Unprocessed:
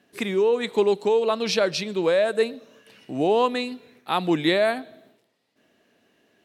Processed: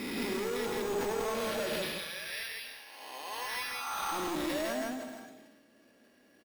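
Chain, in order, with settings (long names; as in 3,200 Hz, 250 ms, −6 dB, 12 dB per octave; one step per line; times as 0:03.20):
peak hold with a rise ahead of every peak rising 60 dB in 1.18 s
high-shelf EQ 4,100 Hz −7.5 dB
comb filter 3.6 ms, depth 41%
downward compressor, threshold −21 dBFS, peak gain reduction 8 dB
0:01.81–0:04.11: high-pass with resonance 2,900 Hz → 1,100 Hz, resonance Q 1.6
decimation without filtering 6×
gain into a clipping stage and back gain 29 dB
loudspeakers that aren't time-aligned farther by 33 metres −10 dB, 56 metres −2 dB
reverb whose tail is shaped and stops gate 400 ms flat, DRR 11.5 dB
level that may fall only so fast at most 38 dB per second
level −6 dB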